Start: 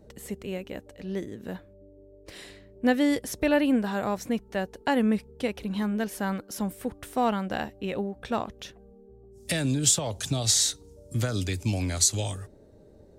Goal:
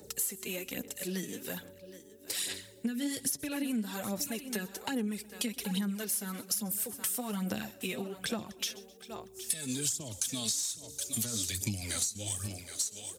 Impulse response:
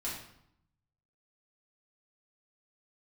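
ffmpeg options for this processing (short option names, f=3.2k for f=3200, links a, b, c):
-filter_complex "[0:a]flanger=delay=2.2:depth=7.3:regen=42:speed=0.21:shape=sinusoidal,asplit=2[a][b];[b]aecho=0:1:767:0.112[c];[a][c]amix=inputs=2:normalize=0,acrossover=split=330[d][e];[e]acompressor=threshold=-43dB:ratio=5[f];[d][f]amix=inputs=2:normalize=0,crystalizer=i=5:c=0,highshelf=f=3.8k:g=7.5,asplit=2[g][h];[h]aecho=0:1:125|250|375:0.0794|0.0342|0.0147[i];[g][i]amix=inputs=2:normalize=0,aphaser=in_gain=1:out_gain=1:delay=4.6:decay=0.55:speed=1.2:type=sinusoidal,highpass=130,acompressor=threshold=-31dB:ratio=8,asetrate=42845,aresample=44100,atempo=1.0293,volume=1dB"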